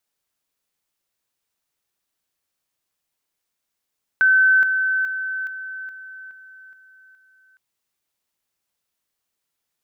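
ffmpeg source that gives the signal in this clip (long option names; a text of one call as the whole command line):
ffmpeg -f lavfi -i "aevalsrc='pow(10,(-11.5-6*floor(t/0.42))/20)*sin(2*PI*1530*t)':duration=3.36:sample_rate=44100" out.wav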